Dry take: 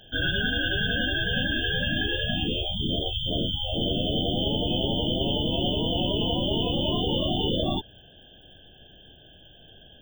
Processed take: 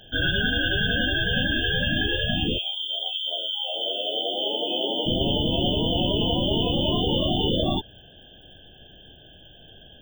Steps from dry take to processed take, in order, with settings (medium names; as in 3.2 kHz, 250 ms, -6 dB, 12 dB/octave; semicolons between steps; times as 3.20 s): 2.57–5.05 s: high-pass 960 Hz -> 290 Hz 24 dB/octave; trim +2.5 dB